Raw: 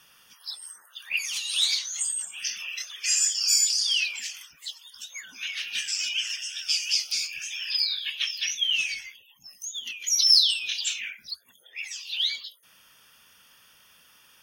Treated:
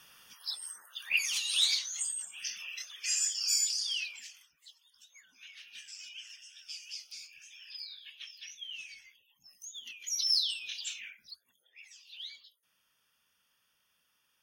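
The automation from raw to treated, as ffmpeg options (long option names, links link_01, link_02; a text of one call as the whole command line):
ffmpeg -i in.wav -af "volume=7dB,afade=type=out:start_time=1.17:duration=0.99:silence=0.473151,afade=type=out:start_time=3.65:duration=0.87:silence=0.281838,afade=type=in:start_time=8.88:duration=0.68:silence=0.398107,afade=type=out:start_time=10.96:duration=0.85:silence=0.421697" out.wav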